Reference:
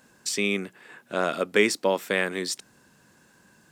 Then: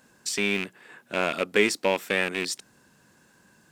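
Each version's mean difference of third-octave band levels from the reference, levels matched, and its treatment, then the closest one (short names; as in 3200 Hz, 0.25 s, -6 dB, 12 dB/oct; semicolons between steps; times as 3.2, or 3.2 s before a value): 2.0 dB: rattling part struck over -36 dBFS, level -16 dBFS; gain -1 dB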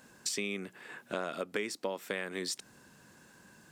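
4.0 dB: compressor 8:1, threshold -32 dBFS, peak gain reduction 17 dB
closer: first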